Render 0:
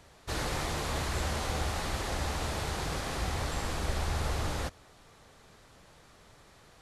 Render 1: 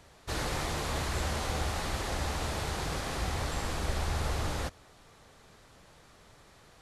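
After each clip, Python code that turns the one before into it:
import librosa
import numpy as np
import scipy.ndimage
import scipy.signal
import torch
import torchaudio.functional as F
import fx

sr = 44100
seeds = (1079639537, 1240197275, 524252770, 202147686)

y = x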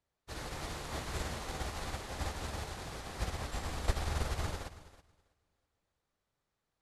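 y = fx.echo_feedback(x, sr, ms=325, feedback_pct=45, wet_db=-6.5)
y = fx.upward_expand(y, sr, threshold_db=-46.0, expansion=2.5)
y = y * 10.0 ** (1.5 / 20.0)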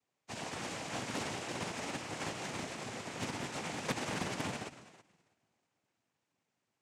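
y = fx.noise_vocoder(x, sr, seeds[0], bands=4)
y = fx.doppler_dist(y, sr, depth_ms=0.54)
y = y * 10.0 ** (2.5 / 20.0)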